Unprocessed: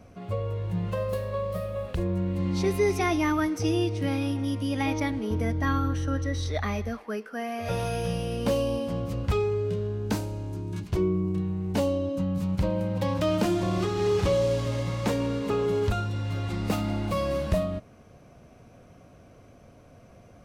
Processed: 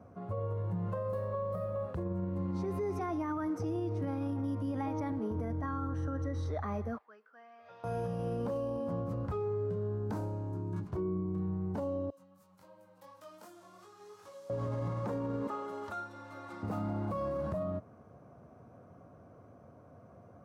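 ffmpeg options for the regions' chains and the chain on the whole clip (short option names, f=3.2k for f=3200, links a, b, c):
-filter_complex "[0:a]asettb=1/sr,asplit=3[a][b][c];[a]atrim=end=6.984[d];[b]atrim=start=6.98:end=7.84,asetpts=PTS-STARTPTS,afade=t=in:d=0.004:c=qsin,afade=t=out:st=0.856:d=0.004:c=qsin,lowpass=f=3.9k:w=0.5412,lowpass=f=3.9k:w=1.3066,aderivative[e];[c]atrim=start=7.836[f];[d][e]acrossfade=d=0.004:c1=hsin:c2=qsin[g];[g][f]acrossfade=d=0.004:c1=qsin:c2=hsin,asettb=1/sr,asplit=3[h][i][j];[h]atrim=end=12.104[k];[i]atrim=start=12.1:end=14.5,asetpts=PTS-STARTPTS,afade=t=in:d=0.004:c=qsin,afade=t=out:st=2.396:d=0.004:c=qsin,aderivative,flanger=delay=19.5:depth=2.6:speed=2.8[l];[j]atrim=start=14.496[m];[k][l]acrossfade=d=0.004:c1=hsin:c2=qsin[n];[n][m]acrossfade=d=0.004:c1=qsin:c2=hsin,asettb=1/sr,asplit=3[o][p][q];[o]atrim=end=15.474[r];[p]atrim=start=15.47:end=16.63,asetpts=PTS-STARTPTS,afade=t=in:d=0.004:c=qsin,afade=t=out:st=1.156:d=0.004:c=qsin,highpass=f=1.3k:p=1,aecho=1:1:3.4:0.65,atrim=end_sample=51156[s];[q]atrim=start=16.626[t];[r][s]acrossfade=d=0.004:c1=hsin:c2=qsin[u];[u][t]acrossfade=d=0.004:c1=qsin:c2=hsin,highpass=f=77:w=0.5412,highpass=f=77:w=1.3066,highshelf=f=1.8k:t=q:w=1.5:g=-13,alimiter=level_in=0.5dB:limit=-24dB:level=0:latency=1:release=46,volume=-0.5dB,volume=-3.5dB"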